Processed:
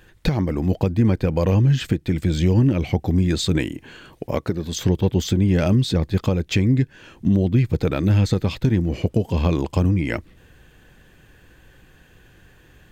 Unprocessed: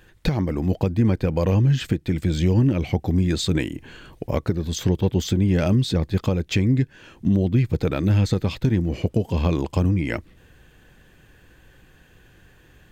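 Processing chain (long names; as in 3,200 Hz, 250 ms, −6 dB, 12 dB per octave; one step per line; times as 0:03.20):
0:03.72–0:04.75: low-shelf EQ 88 Hz −11 dB
level +1.5 dB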